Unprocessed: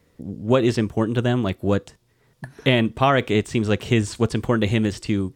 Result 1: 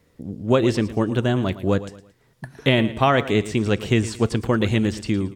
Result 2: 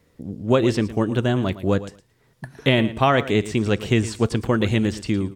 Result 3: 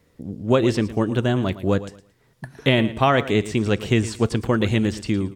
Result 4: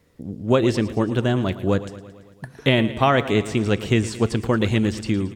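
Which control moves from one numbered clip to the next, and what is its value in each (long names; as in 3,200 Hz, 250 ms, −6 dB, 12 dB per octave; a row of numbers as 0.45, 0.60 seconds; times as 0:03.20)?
repeating echo, feedback: 35, 15, 24, 63%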